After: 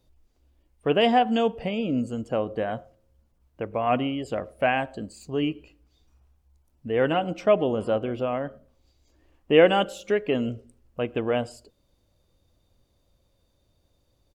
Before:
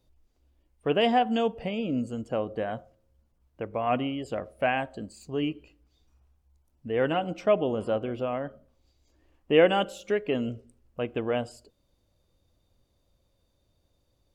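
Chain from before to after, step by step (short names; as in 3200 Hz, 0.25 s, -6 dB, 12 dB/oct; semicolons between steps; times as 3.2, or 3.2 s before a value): speakerphone echo 0.11 s, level -30 dB; gain +3 dB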